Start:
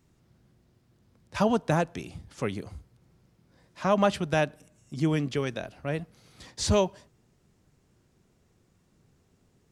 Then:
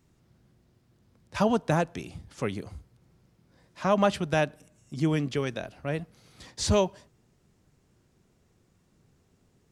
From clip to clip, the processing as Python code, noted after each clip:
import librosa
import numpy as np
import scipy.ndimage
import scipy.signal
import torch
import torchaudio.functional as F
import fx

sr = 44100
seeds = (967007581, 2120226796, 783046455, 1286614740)

y = x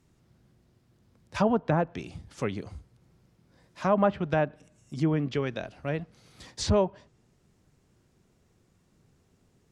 y = fx.env_lowpass_down(x, sr, base_hz=1600.0, full_db=-21.5)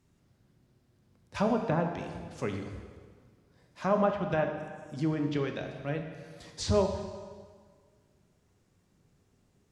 y = fx.rev_plate(x, sr, seeds[0], rt60_s=1.7, hf_ratio=0.85, predelay_ms=0, drr_db=4.0)
y = y * librosa.db_to_amplitude(-4.0)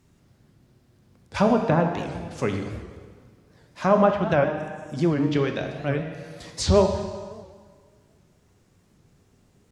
y = fx.record_warp(x, sr, rpm=78.0, depth_cents=160.0)
y = y * librosa.db_to_amplitude(8.0)